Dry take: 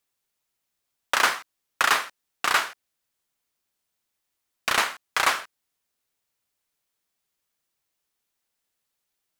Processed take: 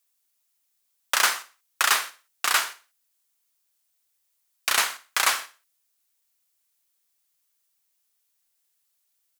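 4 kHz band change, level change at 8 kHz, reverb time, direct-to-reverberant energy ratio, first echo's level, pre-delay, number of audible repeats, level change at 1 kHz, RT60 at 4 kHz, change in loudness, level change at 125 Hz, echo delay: +2.0 dB, +6.0 dB, none, none, -18.0 dB, none, 3, -2.5 dB, none, 0.0 dB, n/a, 61 ms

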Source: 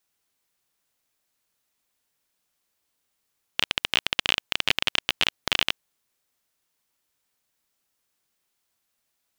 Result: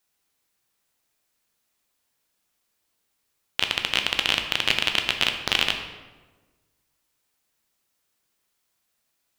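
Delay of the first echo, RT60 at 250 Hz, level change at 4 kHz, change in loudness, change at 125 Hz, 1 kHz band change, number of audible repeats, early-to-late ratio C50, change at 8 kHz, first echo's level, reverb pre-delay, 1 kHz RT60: none, 1.6 s, +2.0 dB, +2.0 dB, +3.0 dB, +2.5 dB, none, 7.5 dB, +2.0 dB, none, 10 ms, 1.2 s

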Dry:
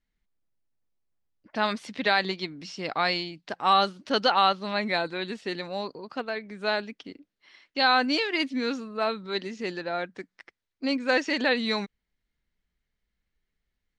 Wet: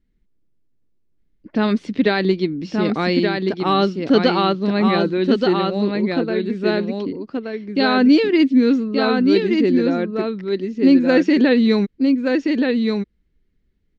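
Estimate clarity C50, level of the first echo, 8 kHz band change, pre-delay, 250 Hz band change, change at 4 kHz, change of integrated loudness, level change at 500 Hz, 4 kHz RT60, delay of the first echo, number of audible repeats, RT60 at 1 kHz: none, -4.0 dB, n/a, none, +17.5 dB, +2.0 dB, +9.0 dB, +11.5 dB, none, 1.176 s, 1, none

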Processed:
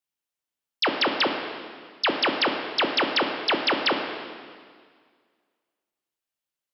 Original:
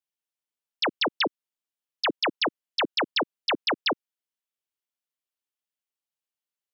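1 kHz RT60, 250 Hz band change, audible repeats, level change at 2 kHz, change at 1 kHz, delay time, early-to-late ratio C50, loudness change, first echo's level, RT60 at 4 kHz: 1.9 s, +4.0 dB, none, +3.5 dB, +4.0 dB, none, 5.0 dB, +3.0 dB, none, 1.8 s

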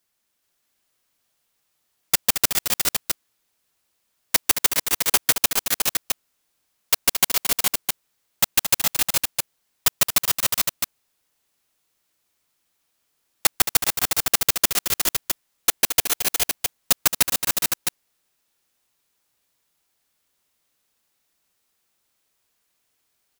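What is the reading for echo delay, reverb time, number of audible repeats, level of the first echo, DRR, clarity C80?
0.222 s, none, 3, -9.0 dB, none, none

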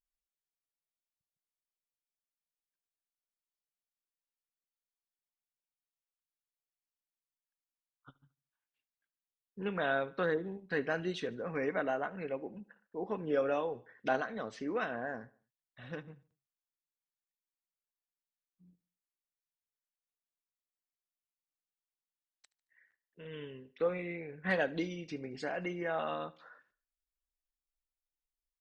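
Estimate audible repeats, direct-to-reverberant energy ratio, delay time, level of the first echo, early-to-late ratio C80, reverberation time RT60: 2, none, 74 ms, -22.0 dB, none, none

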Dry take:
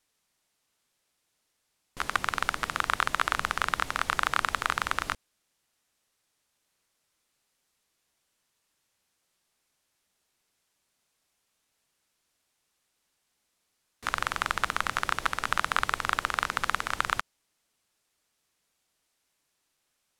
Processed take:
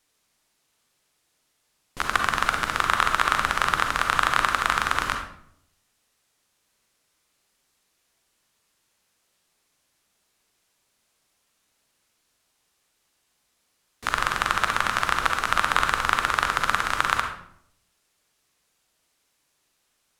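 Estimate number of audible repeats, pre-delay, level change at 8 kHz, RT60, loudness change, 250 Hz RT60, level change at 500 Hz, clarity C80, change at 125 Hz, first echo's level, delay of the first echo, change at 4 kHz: none, 37 ms, +5.5 dB, 0.70 s, +6.0 dB, 0.85 s, +6.5 dB, 9.0 dB, +6.5 dB, none, none, +5.5 dB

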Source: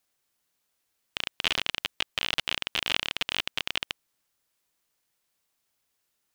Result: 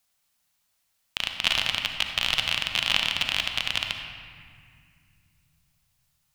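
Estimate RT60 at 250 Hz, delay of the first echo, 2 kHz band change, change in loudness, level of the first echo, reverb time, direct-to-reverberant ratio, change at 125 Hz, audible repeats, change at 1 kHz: 3.5 s, none, +4.0 dB, +4.0 dB, none, 2.1 s, 4.0 dB, +6.0 dB, none, +3.0 dB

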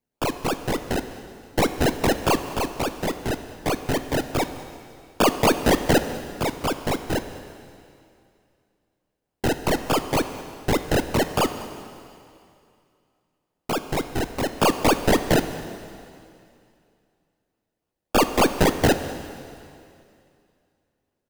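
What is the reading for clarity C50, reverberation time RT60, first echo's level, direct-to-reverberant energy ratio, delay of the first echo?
10.0 dB, 2.5 s, -20.0 dB, 9.0 dB, 0.2 s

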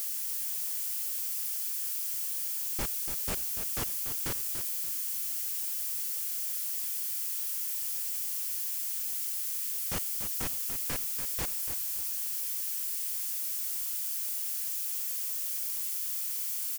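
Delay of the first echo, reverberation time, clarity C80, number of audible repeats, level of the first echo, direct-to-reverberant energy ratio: 0.289 s, none, none, 3, -9.0 dB, none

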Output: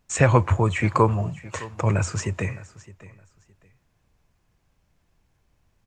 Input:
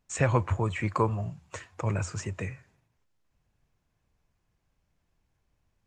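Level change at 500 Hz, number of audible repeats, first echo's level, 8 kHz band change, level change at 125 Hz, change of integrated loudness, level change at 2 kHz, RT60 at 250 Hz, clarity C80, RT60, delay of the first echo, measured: +7.5 dB, 2, -19.0 dB, +7.5 dB, +7.5 dB, +7.0 dB, +7.5 dB, none, none, none, 0.614 s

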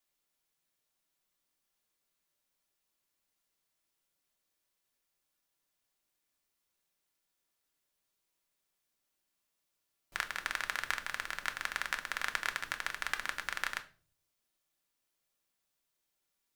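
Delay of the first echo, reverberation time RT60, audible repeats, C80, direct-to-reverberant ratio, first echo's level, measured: none, 0.45 s, none, 21.0 dB, 6.0 dB, none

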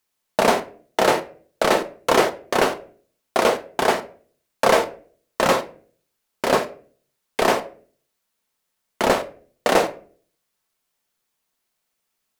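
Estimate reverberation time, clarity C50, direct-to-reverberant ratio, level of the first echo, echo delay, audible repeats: 0.45 s, 15.5 dB, 7.5 dB, none, none, none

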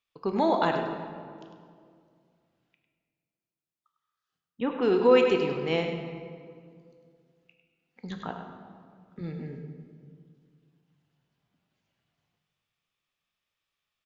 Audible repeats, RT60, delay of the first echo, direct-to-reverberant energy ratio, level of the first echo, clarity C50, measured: 1, 2.1 s, 0.101 s, 3.0 dB, -9.5 dB, 4.5 dB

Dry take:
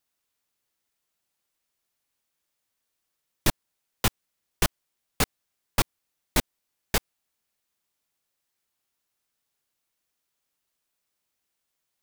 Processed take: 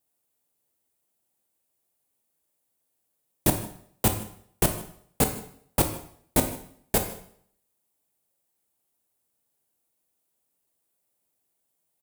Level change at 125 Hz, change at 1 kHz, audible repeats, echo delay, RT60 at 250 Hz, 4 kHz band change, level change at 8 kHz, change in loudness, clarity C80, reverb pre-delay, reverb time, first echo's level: +3.5 dB, +1.5 dB, 1, 0.155 s, 0.60 s, -4.5 dB, +3.0 dB, +2.0 dB, 12.0 dB, 7 ms, 0.60 s, -20.5 dB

